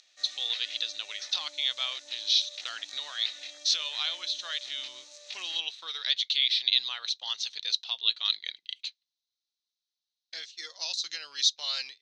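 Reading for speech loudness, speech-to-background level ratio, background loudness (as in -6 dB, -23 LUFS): -29.0 LUFS, 15.0 dB, -44.0 LUFS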